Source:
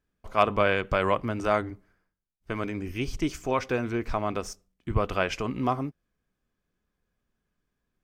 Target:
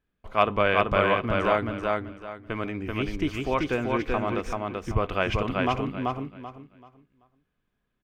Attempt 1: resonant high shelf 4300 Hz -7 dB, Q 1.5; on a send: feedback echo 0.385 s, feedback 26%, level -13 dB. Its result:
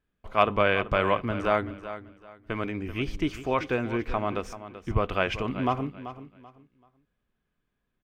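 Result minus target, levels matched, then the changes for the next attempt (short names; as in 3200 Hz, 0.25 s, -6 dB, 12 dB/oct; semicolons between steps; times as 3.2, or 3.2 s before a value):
echo-to-direct -10.5 dB
change: feedback echo 0.385 s, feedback 26%, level -2.5 dB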